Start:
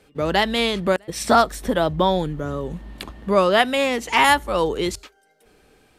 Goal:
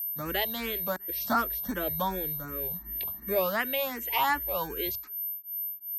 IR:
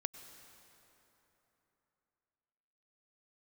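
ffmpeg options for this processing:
-filter_complex "[0:a]agate=range=-33dB:threshold=-44dB:ratio=3:detection=peak,adynamicequalizer=threshold=0.0178:dfrequency=210:dqfactor=0.99:tfrequency=210:tqfactor=0.99:attack=5:release=100:ratio=0.375:range=2.5:mode=cutabove:tftype=bell,acrossover=split=380|600|6100[link_01][link_02][link_03][link_04];[link_01]acrusher=samples=22:mix=1:aa=0.000001[link_05];[link_04]alimiter=level_in=4.5dB:limit=-24dB:level=0:latency=1:release=456,volume=-4.5dB[link_06];[link_05][link_02][link_03][link_06]amix=inputs=4:normalize=0,aeval=exprs='val(0)+0.0794*sin(2*PI*13000*n/s)':channel_layout=same,asplit=2[link_07][link_08];[link_08]afreqshift=2.7[link_09];[link_07][link_09]amix=inputs=2:normalize=1,volume=-8dB"

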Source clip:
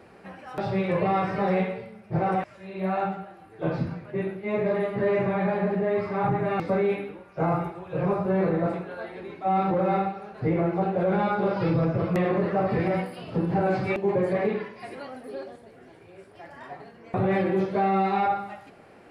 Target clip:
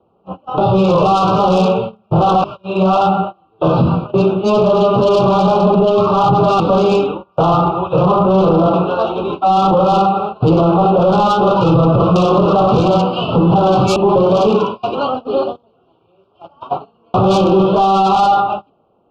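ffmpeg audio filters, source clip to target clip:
ffmpeg -i in.wav -filter_complex "[0:a]lowpass=frequency=2800:width=0.5412,lowpass=frequency=2800:width=1.3066,bandreject=frequency=50:width_type=h:width=6,bandreject=frequency=100:width_type=h:width=6,bandreject=frequency=150:width_type=h:width=6,bandreject=frequency=200:width_type=h:width=6,bandreject=frequency=250:width_type=h:width=6,bandreject=frequency=300:width_type=h:width=6,bandreject=frequency=350:width_type=h:width=6,bandreject=frequency=400:width_type=h:width=6,agate=range=-26dB:threshold=-40dB:ratio=16:detection=peak,acrossover=split=430|1100[link_01][link_02][link_03];[link_03]dynaudnorm=framelen=140:gausssize=11:maxgain=11dB[link_04];[link_01][link_02][link_04]amix=inputs=3:normalize=0,asoftclip=type=tanh:threshold=-19.5dB,asuperstop=centerf=1900:order=8:qfactor=1.2,alimiter=level_in=24dB:limit=-1dB:release=50:level=0:latency=1,volume=-4dB" out.wav

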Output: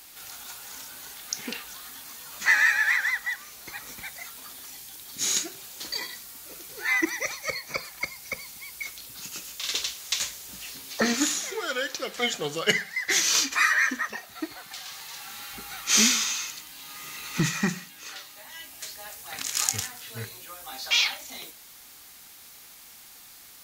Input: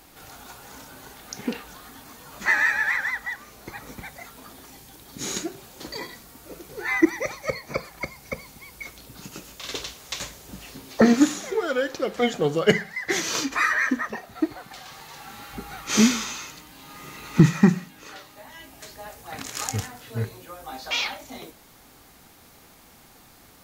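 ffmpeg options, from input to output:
ffmpeg -i in.wav -af "aeval=exprs='0.708*(cos(1*acos(clip(val(0)/0.708,-1,1)))-cos(1*PI/2))+0.02*(cos(5*acos(clip(val(0)/0.708,-1,1)))-cos(5*PI/2))':channel_layout=same,tiltshelf=frequency=1300:gain=-9,volume=-3dB" out.wav

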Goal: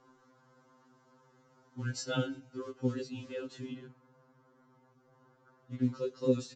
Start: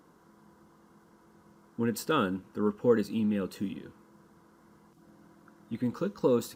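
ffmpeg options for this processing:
ffmpeg -i in.wav -filter_complex "[0:a]asettb=1/sr,asplit=3[link_01][link_02][link_03];[link_01]atrim=end=3.864[link_04];[link_02]atrim=start=3.86:end=5.79,asetpts=PTS-STARTPTS,afade=type=in:duration=0.004:curve=qsin,afade=type=out:start_time=1.926:duration=0.004:curve=qsin,highshelf=frequency=2800:gain=-11[link_05];[link_03]atrim=start=5.786[link_06];[link_04][link_05]acrossfade=duration=0.004:curve1=hsin:curve2=qsin[link_07];[link_07][link_06]acrossfade=duration=0.004:curve1=qsin:curve2=hsin,acrossover=split=250|700|2000[link_08][link_09][link_10][link_11];[link_10]acompressor=threshold=-56dB:ratio=6[link_12];[link_08][link_09][link_12][link_11]amix=inputs=4:normalize=0,acrusher=bits=8:mode=log:mix=0:aa=0.000001,asplit=3[link_13][link_14][link_15];[link_13]afade=type=out:start_time=1.86:duration=0.02[link_16];[link_14]aecho=1:1:6.4:0.89,afade=type=in:start_time=1.86:duration=0.02,afade=type=out:start_time=2.54:duration=0.02[link_17];[link_15]afade=type=in:start_time=2.54:duration=0.02[link_18];[link_16][link_17][link_18]amix=inputs=3:normalize=0,aresample=16000,aresample=44100,afftfilt=real='re*2.45*eq(mod(b,6),0)':imag='im*2.45*eq(mod(b,6),0)':win_size=2048:overlap=0.75" out.wav

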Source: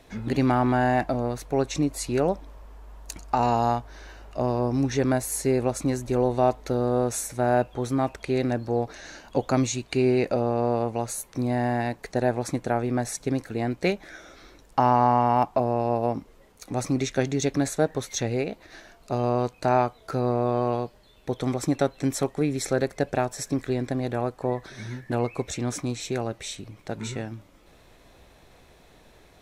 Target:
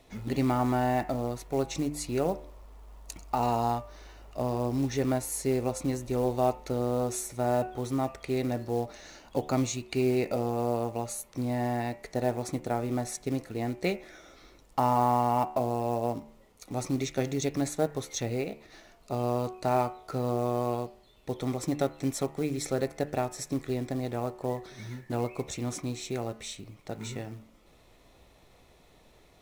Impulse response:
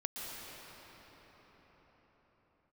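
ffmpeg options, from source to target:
-af "bandreject=frequency=1600:width=7.1,acrusher=bits=6:mode=log:mix=0:aa=0.000001,bandreject=frequency=74.07:width_type=h:width=4,bandreject=frequency=148.14:width_type=h:width=4,bandreject=frequency=222.21:width_type=h:width=4,bandreject=frequency=296.28:width_type=h:width=4,bandreject=frequency=370.35:width_type=h:width=4,bandreject=frequency=444.42:width_type=h:width=4,bandreject=frequency=518.49:width_type=h:width=4,bandreject=frequency=592.56:width_type=h:width=4,bandreject=frequency=666.63:width_type=h:width=4,bandreject=frequency=740.7:width_type=h:width=4,bandreject=frequency=814.77:width_type=h:width=4,bandreject=frequency=888.84:width_type=h:width=4,bandreject=frequency=962.91:width_type=h:width=4,bandreject=frequency=1036.98:width_type=h:width=4,bandreject=frequency=1111.05:width_type=h:width=4,bandreject=frequency=1185.12:width_type=h:width=4,bandreject=frequency=1259.19:width_type=h:width=4,bandreject=frequency=1333.26:width_type=h:width=4,bandreject=frequency=1407.33:width_type=h:width=4,bandreject=frequency=1481.4:width_type=h:width=4,bandreject=frequency=1555.47:width_type=h:width=4,bandreject=frequency=1629.54:width_type=h:width=4,bandreject=frequency=1703.61:width_type=h:width=4,bandreject=frequency=1777.68:width_type=h:width=4,bandreject=frequency=1851.75:width_type=h:width=4,bandreject=frequency=1925.82:width_type=h:width=4,bandreject=frequency=1999.89:width_type=h:width=4,bandreject=frequency=2073.96:width_type=h:width=4,bandreject=frequency=2148.03:width_type=h:width=4,bandreject=frequency=2222.1:width_type=h:width=4,bandreject=frequency=2296.17:width_type=h:width=4,bandreject=frequency=2370.24:width_type=h:width=4,bandreject=frequency=2444.31:width_type=h:width=4,bandreject=frequency=2518.38:width_type=h:width=4,bandreject=frequency=2592.45:width_type=h:width=4,bandreject=frequency=2666.52:width_type=h:width=4,bandreject=frequency=2740.59:width_type=h:width=4,bandreject=frequency=2814.66:width_type=h:width=4,volume=-4.5dB"

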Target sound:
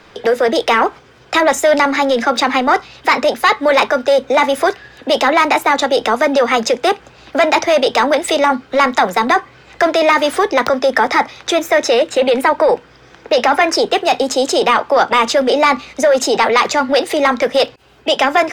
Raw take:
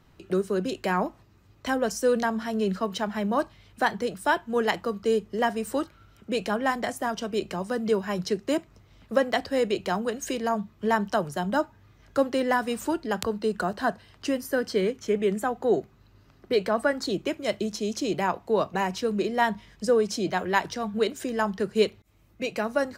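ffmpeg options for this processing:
ffmpeg -i in.wav -filter_complex "[0:a]asetrate=54684,aresample=44100,apsyclip=26.5dB,acrossover=split=360 5800:gain=0.178 1 0.2[link_01][link_02][link_03];[link_01][link_02][link_03]amix=inputs=3:normalize=0,volume=-5.5dB" out.wav

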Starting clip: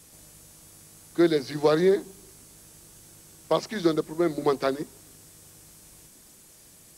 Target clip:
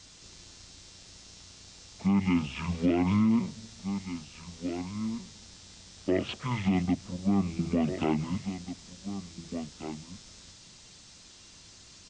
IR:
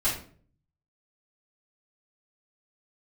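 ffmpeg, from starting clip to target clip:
-filter_complex "[0:a]asplit=2[link_01][link_02];[link_02]aecho=0:1:1032:0.2[link_03];[link_01][link_03]amix=inputs=2:normalize=0,alimiter=limit=-17.5dB:level=0:latency=1:release=58,asetrate=25442,aresample=44100"

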